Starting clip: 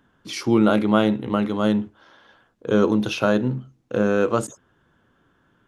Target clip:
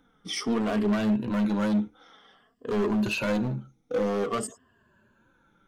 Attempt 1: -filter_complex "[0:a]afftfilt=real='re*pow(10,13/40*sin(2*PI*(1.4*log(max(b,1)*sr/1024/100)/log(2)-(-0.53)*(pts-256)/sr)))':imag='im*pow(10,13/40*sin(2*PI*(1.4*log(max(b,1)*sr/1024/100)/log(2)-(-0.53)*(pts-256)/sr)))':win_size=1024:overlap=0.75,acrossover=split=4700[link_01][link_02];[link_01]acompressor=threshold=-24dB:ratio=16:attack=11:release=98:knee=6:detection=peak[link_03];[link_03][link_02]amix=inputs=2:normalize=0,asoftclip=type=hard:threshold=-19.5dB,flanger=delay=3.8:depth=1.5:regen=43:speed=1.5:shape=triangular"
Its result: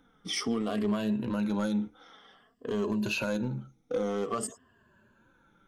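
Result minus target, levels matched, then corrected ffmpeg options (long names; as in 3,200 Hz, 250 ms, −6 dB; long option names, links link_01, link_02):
downward compressor: peak gain reduction +9.5 dB
-filter_complex "[0:a]afftfilt=real='re*pow(10,13/40*sin(2*PI*(1.4*log(max(b,1)*sr/1024/100)/log(2)-(-0.53)*(pts-256)/sr)))':imag='im*pow(10,13/40*sin(2*PI*(1.4*log(max(b,1)*sr/1024/100)/log(2)-(-0.53)*(pts-256)/sr)))':win_size=1024:overlap=0.75,acrossover=split=4700[link_01][link_02];[link_01]acompressor=threshold=-13.5dB:ratio=16:attack=11:release=98:knee=6:detection=peak[link_03];[link_03][link_02]amix=inputs=2:normalize=0,asoftclip=type=hard:threshold=-19.5dB,flanger=delay=3.8:depth=1.5:regen=43:speed=1.5:shape=triangular"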